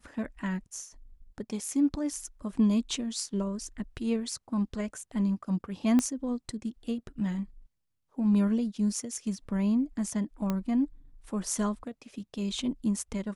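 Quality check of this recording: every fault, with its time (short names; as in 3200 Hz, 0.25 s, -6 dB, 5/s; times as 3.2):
5.99 pop -14 dBFS
10.5 pop -17 dBFS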